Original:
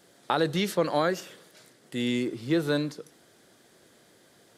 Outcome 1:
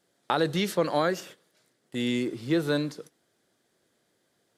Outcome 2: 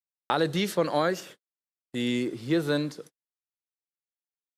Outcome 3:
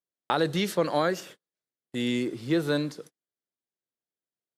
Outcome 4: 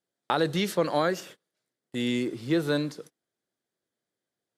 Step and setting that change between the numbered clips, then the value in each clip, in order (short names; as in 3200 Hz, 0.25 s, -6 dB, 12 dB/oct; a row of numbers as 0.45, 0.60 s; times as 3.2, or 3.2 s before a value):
gate, range: -13, -58, -42, -29 dB